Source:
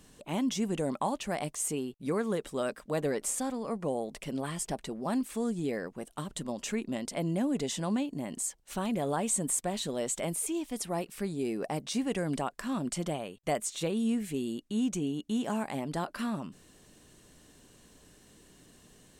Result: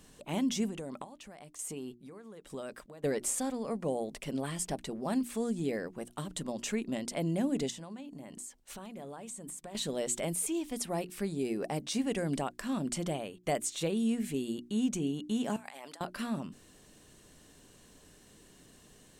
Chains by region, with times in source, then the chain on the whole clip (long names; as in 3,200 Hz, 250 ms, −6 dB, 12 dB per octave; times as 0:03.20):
0:00.68–0:03.04: downward compressor, threshold −36 dBFS + square-wave tremolo 1.1 Hz, depth 65%, duty 40%
0:07.70–0:09.75: mains-hum notches 50/100/150/200/250/300/350 Hz + downward compressor 5 to 1, threshold −42 dBFS
0:15.56–0:16.01: high-pass filter 870 Hz + compressor whose output falls as the input rises −49 dBFS
whole clip: mains-hum notches 60/120/180/240/300/360 Hz; dynamic equaliser 1,100 Hz, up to −4 dB, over −46 dBFS, Q 1.5